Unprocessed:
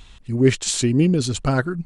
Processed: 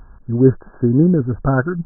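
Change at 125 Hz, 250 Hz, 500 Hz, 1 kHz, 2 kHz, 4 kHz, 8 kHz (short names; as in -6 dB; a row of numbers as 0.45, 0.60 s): +4.0 dB, +4.0 dB, +4.0 dB, +3.0 dB, -0.5 dB, under -40 dB, under -40 dB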